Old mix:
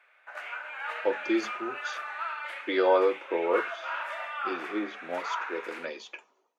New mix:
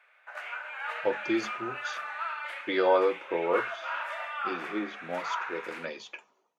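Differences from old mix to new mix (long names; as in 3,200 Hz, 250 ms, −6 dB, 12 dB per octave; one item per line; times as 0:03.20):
speech: remove high-pass filter 320 Hz 24 dB per octave
master: add high-pass filter 370 Hz 12 dB per octave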